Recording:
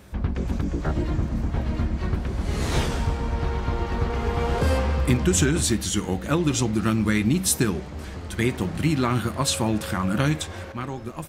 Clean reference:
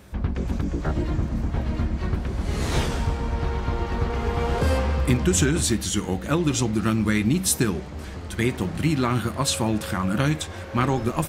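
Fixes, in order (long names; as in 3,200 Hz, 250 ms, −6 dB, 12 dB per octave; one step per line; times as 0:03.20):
level correction +9.5 dB, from 0:10.72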